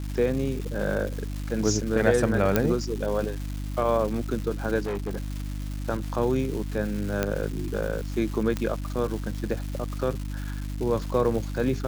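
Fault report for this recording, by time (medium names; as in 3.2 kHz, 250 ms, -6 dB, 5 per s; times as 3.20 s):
crackle 560 per s -33 dBFS
hum 50 Hz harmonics 6 -32 dBFS
2.56 s: pop -6 dBFS
4.80–5.82 s: clipped -25.5 dBFS
7.23 s: pop -10 dBFS
8.57 s: pop -14 dBFS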